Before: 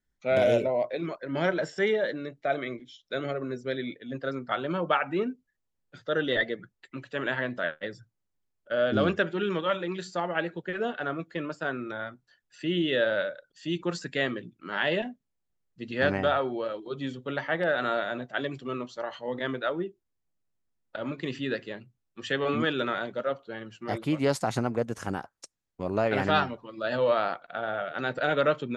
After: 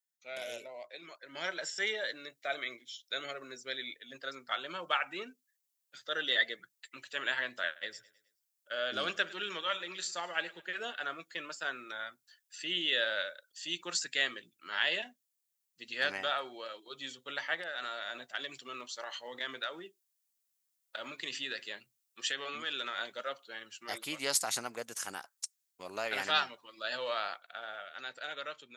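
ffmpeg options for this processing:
-filter_complex "[0:a]asettb=1/sr,asplit=3[a][b][c];[a]atrim=end=7.654[d];[b]atrim=start=7.65:end=10.77,asetpts=PTS-STARTPTS,afade=t=in:d=0.004:c=qsin,afade=t=out:st=3.116:d=0.004:c=qsin,aecho=1:1:106|212|318|424:0.0944|0.0453|0.0218|0.0104,atrim=end_sample=137592[e];[c]atrim=start=10.766[f];[d][e]acrossfade=d=0.004:c1=hsin:c2=qsin[g];[g][f]acrossfade=d=0.004:c1=qsin:c2=hsin,asettb=1/sr,asplit=3[h][i][j];[h]atrim=end=17.544[k];[i]atrim=start=17.54:end=22.99,asetpts=PTS-STARTPTS,afade=t=in:d=0.004:c=qsin,afade=t=out:st=5.446:d=0.004:c=qsin,acompressor=threshold=-28dB:ratio=6:attack=3.2:release=140:knee=1:detection=peak[l];[j]atrim=start=22.986[m];[k][l]acrossfade=d=0.004:c1=hsin:c2=qsin[n];[n][m]acrossfade=d=0.004:c1=qsin:c2=hsin,dynaudnorm=f=130:g=21:m=11.5dB,aderivative"

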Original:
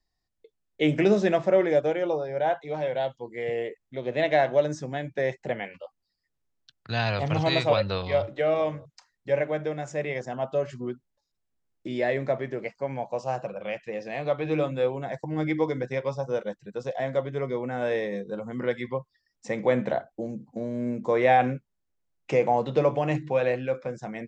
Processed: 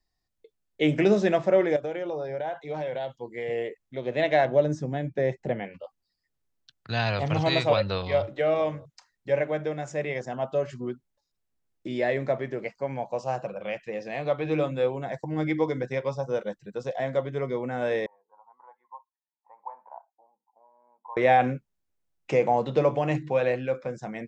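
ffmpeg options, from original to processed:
-filter_complex "[0:a]asettb=1/sr,asplit=3[a][b][c];[a]atrim=end=1.764[d];[b]atrim=start=1.76:end=3.5,asetpts=PTS-STARTPTS,afade=t=in:d=0.004:c=qsin,afade=t=out:st=1.736:d=0.004:c=qsin,acompressor=threshold=-27dB:ratio=10:attack=3.2:release=140:knee=1:detection=peak[e];[c]atrim=start=3.496[f];[d][e]acrossfade=d=0.004:c1=hsin:c2=qsin[g];[g][f]acrossfade=d=0.004:c1=qsin:c2=hsin,asettb=1/sr,asplit=3[h][i][j];[h]atrim=end=4.454[k];[i]atrim=start=4.45:end=5.84,asetpts=PTS-STARTPTS,afade=t=in:d=0.004:c=qsin,afade=t=out:st=1.386:d=0.004:c=qsin,tiltshelf=f=640:g=5.5[l];[j]atrim=start=5.836[m];[k][l]acrossfade=d=0.004:c1=hsin:c2=qsin[n];[n][m]acrossfade=d=0.004:c1=qsin:c2=hsin,asettb=1/sr,asplit=3[o][p][q];[o]atrim=end=18.064[r];[p]atrim=start=18.06:end=21.17,asetpts=PTS-STARTPTS,afade=t=in:d=0.004:c=qsin,afade=t=out:st=3.106:d=0.004:c=qsin,asuperpass=centerf=920:order=4:qfactor=5.1[s];[q]atrim=start=21.166[t];[r][s]acrossfade=d=0.004:c1=hsin:c2=qsin[u];[u][t]acrossfade=d=0.004:c1=qsin:c2=hsin"

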